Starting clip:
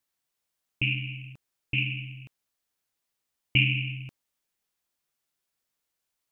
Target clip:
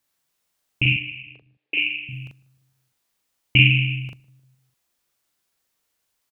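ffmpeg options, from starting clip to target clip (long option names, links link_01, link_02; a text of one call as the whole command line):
ffmpeg -i in.wav -filter_complex "[0:a]asettb=1/sr,asplit=3[link_01][link_02][link_03];[link_01]atrim=end=0.924[link_04];[link_02]atrim=start=0.92:end=2.09,asetpts=PTS-STARTPTS,afade=type=in:duration=0.004:curve=qsin,afade=type=out:start_time=1.166:duration=0.004:curve=qsin,highpass=frequency=360:width=0.5412,highpass=frequency=360:width=1.3066,equalizer=frequency=430:width_type=q:width=4:gain=6,equalizer=frequency=980:width_type=q:width=4:gain=-6,equalizer=frequency=1400:width_type=q:width=4:gain=-10,lowpass=frequency=3100:width=0.5412,lowpass=frequency=3100:width=1.3066[link_05];[link_03]atrim=start=2.086[link_06];[link_04][link_05]acrossfade=duration=0.004:curve1=hsin:curve2=qsin[link_07];[link_07][link_06]acrossfade=duration=0.004:curve1=qsin:curve2=hsin,asplit=2[link_08][link_09];[link_09]adelay=40,volume=-2dB[link_10];[link_08][link_10]amix=inputs=2:normalize=0,asplit=2[link_11][link_12];[link_12]adelay=152,lowpass=frequency=980:poles=1,volume=-20dB,asplit=2[link_13][link_14];[link_14]adelay=152,lowpass=frequency=980:poles=1,volume=0.51,asplit=2[link_15][link_16];[link_16]adelay=152,lowpass=frequency=980:poles=1,volume=0.51,asplit=2[link_17][link_18];[link_18]adelay=152,lowpass=frequency=980:poles=1,volume=0.51[link_19];[link_11][link_13][link_15][link_17][link_19]amix=inputs=5:normalize=0,volume=6dB" out.wav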